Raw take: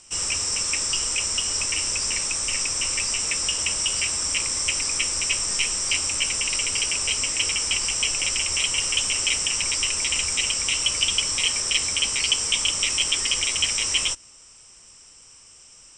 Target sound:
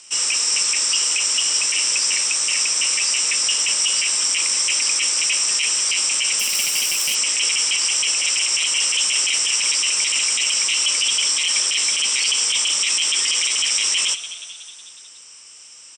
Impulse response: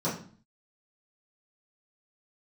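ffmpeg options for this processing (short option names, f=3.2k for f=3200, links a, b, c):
-filter_complex "[0:a]acrossover=split=190 4400:gain=0.2 1 0.2[a][b][c];[a][b][c]amix=inputs=3:normalize=0,asplit=2[d][e];[e]asplit=6[f][g][h][i][j][k];[f]adelay=183,afreqshift=95,volume=-17dB[l];[g]adelay=366,afreqshift=190,volume=-21dB[m];[h]adelay=549,afreqshift=285,volume=-25dB[n];[i]adelay=732,afreqshift=380,volume=-29dB[o];[j]adelay=915,afreqshift=475,volume=-33.1dB[p];[k]adelay=1098,afreqshift=570,volume=-37.1dB[q];[l][m][n][o][p][q]amix=inputs=6:normalize=0[r];[d][r]amix=inputs=2:normalize=0,asettb=1/sr,asplit=3[s][t][u];[s]atrim=end=6.394[v];[t]atrim=start=6.39:end=7.15,asetpts=PTS-STARTPTS,afade=t=in:d=0.004:c=qsin,afade=t=out:st=0.756:d=0.004:c=qsin,aeval=exprs='clip(val(0),-1,0.0211)':c=same[w];[u]atrim=start=7.146[x];[v][w]acrossfade=d=0.004:c1=hsin:c2=qsin[y];[y][x]acrossfade=d=0.004:c1=qsin:c2=hsin,acrossover=split=150[z][aa];[z]acompressor=threshold=-59dB:ratio=6[ab];[aa]alimiter=limit=-20dB:level=0:latency=1:release=20[ac];[ab][ac]amix=inputs=2:normalize=0,crystalizer=i=7.5:c=0,volume=-1.5dB"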